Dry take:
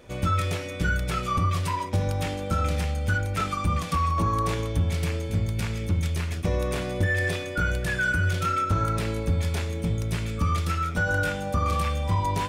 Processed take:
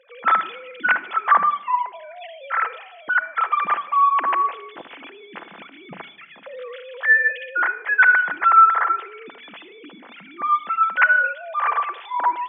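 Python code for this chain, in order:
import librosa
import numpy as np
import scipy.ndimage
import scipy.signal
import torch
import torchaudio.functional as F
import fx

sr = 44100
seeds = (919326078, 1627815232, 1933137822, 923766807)

p1 = fx.sine_speech(x, sr)
p2 = fx.highpass(p1, sr, hz=1100.0, slope=6)
p3 = p2 + fx.echo_feedback(p2, sr, ms=76, feedback_pct=49, wet_db=-22.5, dry=0)
p4 = fx.room_shoebox(p3, sr, seeds[0], volume_m3=2800.0, walls='furnished', distance_m=0.77)
y = p4 * 10.0 ** (6.0 / 20.0)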